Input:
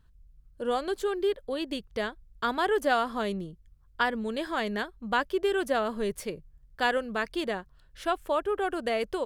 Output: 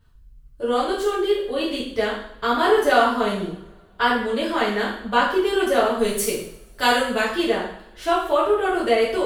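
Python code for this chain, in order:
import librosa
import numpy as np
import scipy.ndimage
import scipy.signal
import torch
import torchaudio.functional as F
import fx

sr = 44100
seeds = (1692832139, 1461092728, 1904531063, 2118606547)

y = fx.high_shelf(x, sr, hz=4500.0, db=11.5, at=(5.98, 7.22))
y = fx.rev_double_slope(y, sr, seeds[0], early_s=0.6, late_s=2.2, knee_db=-25, drr_db=-8.0)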